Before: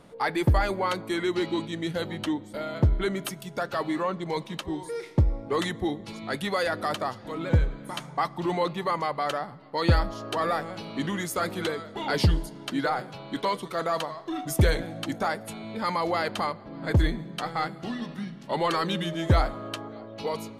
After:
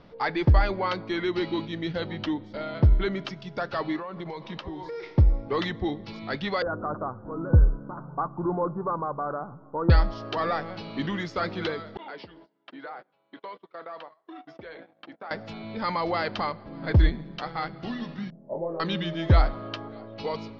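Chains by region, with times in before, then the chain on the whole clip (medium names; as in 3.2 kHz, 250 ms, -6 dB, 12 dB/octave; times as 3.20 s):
3.96–5.18 s: peaking EQ 860 Hz +5 dB 2.6 oct + compression 16:1, threshold -31 dBFS
6.62–9.90 s: rippled Chebyshev low-pass 1.5 kHz, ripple 3 dB + bass shelf 210 Hz +5 dB
11.97–15.31 s: gate -34 dBFS, range -27 dB + compression 2.5:1, threshold -40 dBFS + band-pass 340–2800 Hz
17.09–17.74 s: high-pass 55 Hz + AM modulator 140 Hz, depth 30%
18.30–18.80 s: four-pole ladder low-pass 670 Hz, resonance 60% + doubling 24 ms -3.5 dB
whole clip: elliptic low-pass 5.3 kHz, stop band 50 dB; bass shelf 68 Hz +9.5 dB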